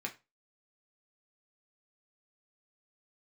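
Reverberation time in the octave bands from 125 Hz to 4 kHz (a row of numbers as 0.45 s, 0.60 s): 0.30 s, 0.25 s, 0.25 s, 0.25 s, 0.25 s, 0.20 s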